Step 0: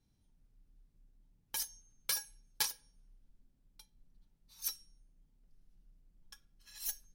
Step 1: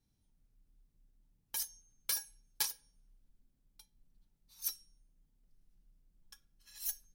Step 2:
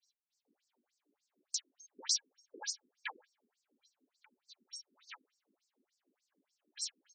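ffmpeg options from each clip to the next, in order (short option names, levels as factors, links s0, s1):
-af "highshelf=f=7000:g=5.5,volume=0.668"
-filter_complex "[0:a]asoftclip=type=tanh:threshold=0.0211,acrossover=split=3000[s0][s1];[s0]adelay=450[s2];[s2][s1]amix=inputs=2:normalize=0,afftfilt=real='re*between(b*sr/1024,300*pow(6200/300,0.5+0.5*sin(2*PI*3.4*pts/sr))/1.41,300*pow(6200/300,0.5+0.5*sin(2*PI*3.4*pts/sr))*1.41)':imag='im*between(b*sr/1024,300*pow(6200/300,0.5+0.5*sin(2*PI*3.4*pts/sr))/1.41,300*pow(6200/300,0.5+0.5*sin(2*PI*3.4*pts/sr))*1.41)':win_size=1024:overlap=0.75,volume=5.62"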